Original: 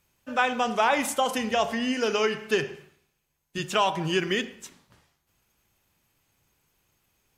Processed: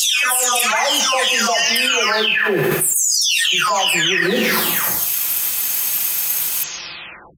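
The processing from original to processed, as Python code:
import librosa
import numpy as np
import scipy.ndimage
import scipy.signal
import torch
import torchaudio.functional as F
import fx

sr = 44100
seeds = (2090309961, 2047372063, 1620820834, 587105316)

y = fx.spec_delay(x, sr, highs='early', ms=736)
y = fx.tilt_eq(y, sr, slope=4.5)
y = fx.env_flatten(y, sr, amount_pct=100)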